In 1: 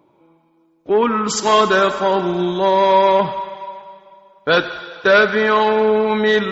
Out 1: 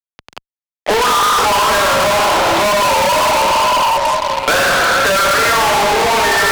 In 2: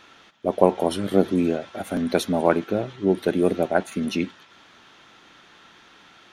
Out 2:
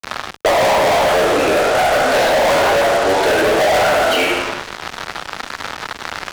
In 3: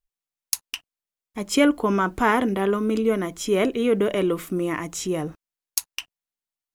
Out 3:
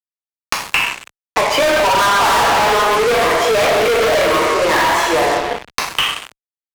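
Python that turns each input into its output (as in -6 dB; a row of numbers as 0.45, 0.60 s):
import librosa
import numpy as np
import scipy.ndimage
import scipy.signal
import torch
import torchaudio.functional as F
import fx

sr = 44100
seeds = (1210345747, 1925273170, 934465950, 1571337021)

p1 = fx.over_compress(x, sr, threshold_db=-18.0, ratio=-0.5)
p2 = x + F.gain(torch.from_numpy(p1), -2.0).numpy()
p3 = scipy.signal.sosfilt(scipy.signal.butter(2, 1900.0, 'lowpass', fs=sr, output='sos'), p2)
p4 = fx.wow_flutter(p3, sr, seeds[0], rate_hz=2.1, depth_cents=130.0)
p5 = scipy.signal.sosfilt(scipy.signal.butter(4, 600.0, 'highpass', fs=sr, output='sos'), p4)
p6 = p5 + 10.0 ** (-20.0 / 20.0) * np.pad(p5, (int(75 * sr / 1000.0), 0))[:len(p5)]
p7 = fx.rev_plate(p6, sr, seeds[1], rt60_s=1.2, hf_ratio=0.85, predelay_ms=0, drr_db=-4.0)
p8 = fx.fuzz(p7, sr, gain_db=31.0, gate_db=-40.0)
p9 = fx.band_squash(p8, sr, depth_pct=70)
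y = F.gain(torch.from_numpy(p9), 1.0).numpy()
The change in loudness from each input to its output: +3.5, +9.0, +9.0 LU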